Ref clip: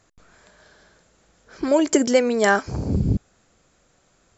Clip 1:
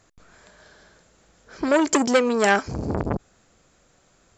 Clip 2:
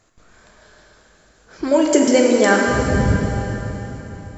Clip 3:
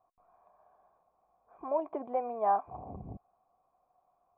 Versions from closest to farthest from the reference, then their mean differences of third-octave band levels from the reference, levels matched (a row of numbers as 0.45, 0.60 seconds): 1, 2, 3; 3.5, 6.0, 10.0 decibels